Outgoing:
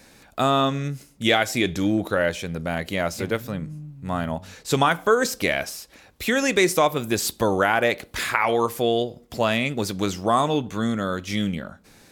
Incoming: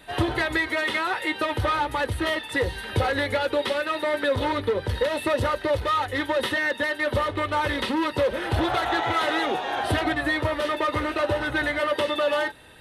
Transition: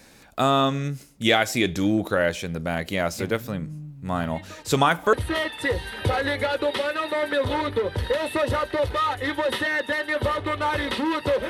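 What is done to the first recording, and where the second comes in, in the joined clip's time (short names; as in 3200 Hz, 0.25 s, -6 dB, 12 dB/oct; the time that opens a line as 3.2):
outgoing
4.15 add incoming from 1.06 s 0.98 s -18 dB
5.13 switch to incoming from 2.04 s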